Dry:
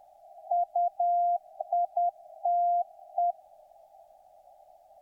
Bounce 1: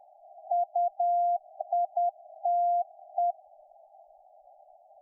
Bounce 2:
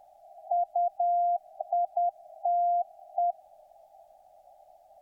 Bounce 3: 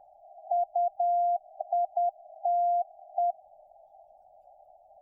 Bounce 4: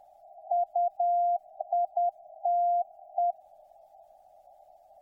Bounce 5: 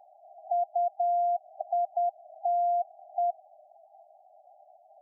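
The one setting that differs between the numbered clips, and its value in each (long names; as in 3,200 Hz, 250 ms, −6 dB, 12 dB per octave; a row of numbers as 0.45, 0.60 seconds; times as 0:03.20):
gate on every frequency bin, under each frame's peak: −20, −60, −35, −45, −10 decibels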